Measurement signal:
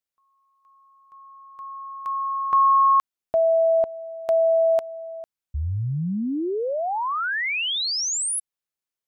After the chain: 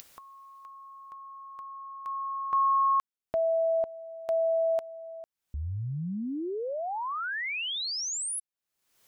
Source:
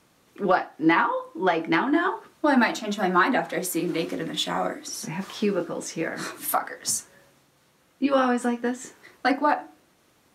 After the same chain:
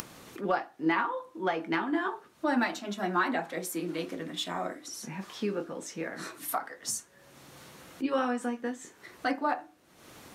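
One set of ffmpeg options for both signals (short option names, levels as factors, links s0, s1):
-af "acompressor=mode=upward:threshold=0.0224:ratio=4:attack=24:release=402:knee=2.83:detection=peak,volume=0.422"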